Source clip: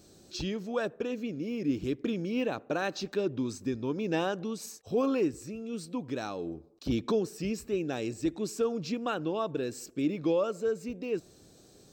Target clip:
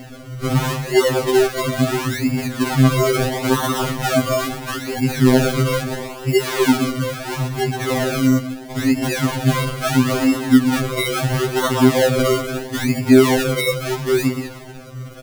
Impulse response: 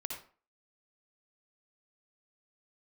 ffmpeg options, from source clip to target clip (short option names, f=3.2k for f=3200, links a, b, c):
-filter_complex "[0:a]asetrate=34530,aresample=44100,bandreject=f=460:w=12,asplit=2[a][b];[b]adelay=122.4,volume=-10dB,highshelf=f=4k:g=-2.76[c];[a][c]amix=inputs=2:normalize=0,asplit=2[d][e];[1:a]atrim=start_sample=2205,lowshelf=f=440:g=-9.5,adelay=124[f];[e][f]afir=irnorm=-1:irlink=0,volume=-5.5dB[g];[d][g]amix=inputs=2:normalize=0,aeval=exprs='val(0)+0.00224*sin(2*PI*12000*n/s)':c=same,bandreject=f=60:t=h:w=6,bandreject=f=120:t=h:w=6,bandreject=f=180:t=h:w=6,bandreject=f=240:t=h:w=6,bandreject=f=300:t=h:w=6,acrusher=samples=35:mix=1:aa=0.000001:lfo=1:lforange=35:lforate=0.75,alimiter=level_in=26dB:limit=-1dB:release=50:level=0:latency=1,afftfilt=real='re*2.45*eq(mod(b,6),0)':imag='im*2.45*eq(mod(b,6),0)':win_size=2048:overlap=0.75,volume=-6.5dB"